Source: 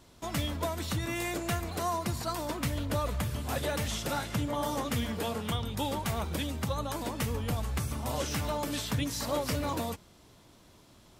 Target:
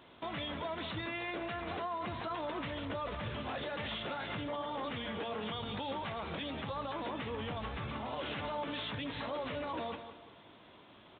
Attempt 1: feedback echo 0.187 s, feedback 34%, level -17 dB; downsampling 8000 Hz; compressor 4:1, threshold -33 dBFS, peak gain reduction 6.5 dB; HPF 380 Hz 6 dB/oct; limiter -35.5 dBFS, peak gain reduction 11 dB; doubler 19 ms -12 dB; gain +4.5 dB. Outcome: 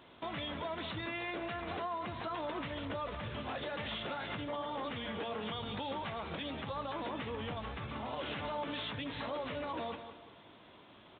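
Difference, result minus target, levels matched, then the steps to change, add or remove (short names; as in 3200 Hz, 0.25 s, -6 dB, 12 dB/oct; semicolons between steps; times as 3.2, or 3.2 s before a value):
compressor: peak gain reduction +6.5 dB
remove: compressor 4:1, threshold -33 dBFS, peak gain reduction 6.5 dB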